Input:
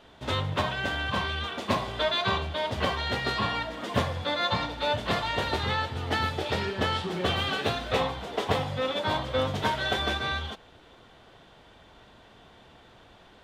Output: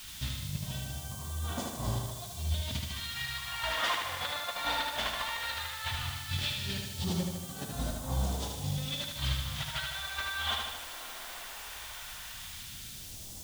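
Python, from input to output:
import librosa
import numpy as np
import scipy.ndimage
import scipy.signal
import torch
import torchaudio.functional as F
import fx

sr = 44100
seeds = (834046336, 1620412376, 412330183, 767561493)

p1 = fx.peak_eq(x, sr, hz=400.0, db=-12.0, octaves=1.0)
p2 = fx.over_compress(p1, sr, threshold_db=-36.0, ratio=-0.5)
p3 = fx.quant_dither(p2, sr, seeds[0], bits=8, dither='triangular')
p4 = fx.phaser_stages(p3, sr, stages=2, low_hz=110.0, high_hz=2100.0, hz=0.16, feedback_pct=50)
y = p4 + fx.echo_feedback(p4, sr, ms=76, feedback_pct=59, wet_db=-4.0, dry=0)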